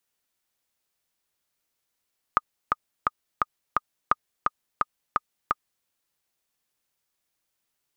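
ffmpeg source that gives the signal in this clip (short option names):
-f lavfi -i "aevalsrc='pow(10,(-5.5-3*gte(mod(t,5*60/172),60/172))/20)*sin(2*PI*1230*mod(t,60/172))*exp(-6.91*mod(t,60/172)/0.03)':d=3.48:s=44100"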